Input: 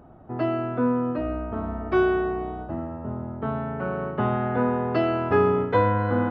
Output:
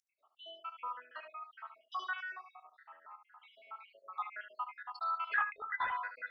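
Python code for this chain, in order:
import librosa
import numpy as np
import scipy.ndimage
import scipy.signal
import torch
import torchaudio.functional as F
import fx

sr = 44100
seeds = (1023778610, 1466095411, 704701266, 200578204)

y = fx.spec_dropout(x, sr, seeds[0], share_pct=76)
y = scipy.signal.sosfilt(scipy.signal.butter(4, 1200.0, 'highpass', fs=sr, output='sos'), y)
y = fx.room_early_taps(y, sr, ms=(21, 72), db=(-14.5, -9.5))
y = fx.lpc_vocoder(y, sr, seeds[1], excitation='whisper', order=16, at=(5.34, 5.92))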